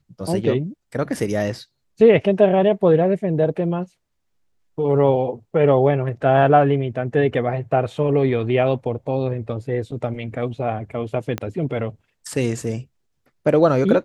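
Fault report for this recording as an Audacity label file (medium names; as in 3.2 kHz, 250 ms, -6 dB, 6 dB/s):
11.380000	11.380000	pop -11 dBFS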